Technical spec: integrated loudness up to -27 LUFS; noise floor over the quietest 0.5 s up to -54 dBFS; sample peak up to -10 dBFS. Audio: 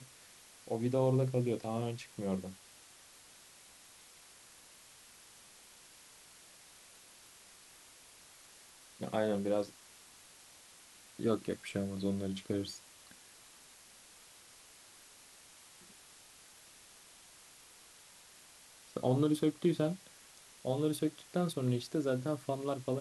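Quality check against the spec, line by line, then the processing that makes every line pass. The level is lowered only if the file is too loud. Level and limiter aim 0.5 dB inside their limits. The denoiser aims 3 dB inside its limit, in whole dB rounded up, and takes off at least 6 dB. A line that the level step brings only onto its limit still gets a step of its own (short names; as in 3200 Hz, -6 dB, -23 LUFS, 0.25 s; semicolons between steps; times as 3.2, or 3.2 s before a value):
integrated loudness -35.0 LUFS: OK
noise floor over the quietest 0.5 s -58 dBFS: OK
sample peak -17.5 dBFS: OK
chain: none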